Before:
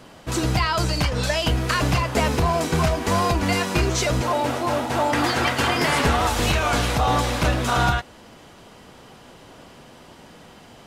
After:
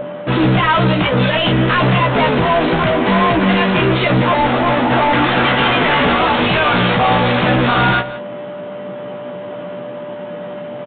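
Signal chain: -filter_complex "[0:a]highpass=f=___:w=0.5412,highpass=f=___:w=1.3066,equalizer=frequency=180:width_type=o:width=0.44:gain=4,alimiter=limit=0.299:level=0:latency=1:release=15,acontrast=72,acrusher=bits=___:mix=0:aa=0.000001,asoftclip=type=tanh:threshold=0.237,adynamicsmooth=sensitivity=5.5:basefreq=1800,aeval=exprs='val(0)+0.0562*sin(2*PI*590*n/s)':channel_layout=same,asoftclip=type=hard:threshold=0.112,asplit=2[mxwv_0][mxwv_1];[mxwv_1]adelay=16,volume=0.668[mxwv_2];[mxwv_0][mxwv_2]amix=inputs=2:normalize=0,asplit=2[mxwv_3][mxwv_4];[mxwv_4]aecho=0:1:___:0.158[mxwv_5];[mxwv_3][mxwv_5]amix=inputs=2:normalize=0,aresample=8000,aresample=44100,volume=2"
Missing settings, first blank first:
130, 130, 10, 174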